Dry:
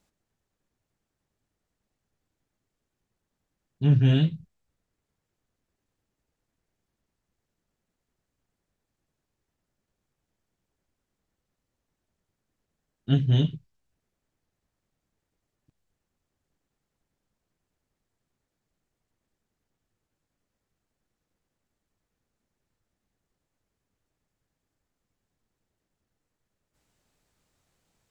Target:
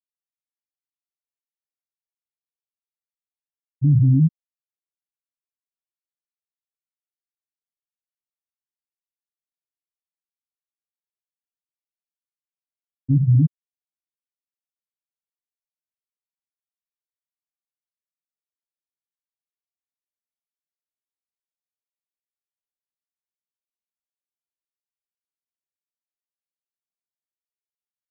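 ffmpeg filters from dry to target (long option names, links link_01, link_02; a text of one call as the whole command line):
ffmpeg -i in.wav -af "afftfilt=real='re*gte(hypot(re,im),0.355)':imag='im*gte(hypot(re,im),0.355)':win_size=1024:overlap=0.75,alimiter=limit=-19dB:level=0:latency=1:release=19,volume=9dB" out.wav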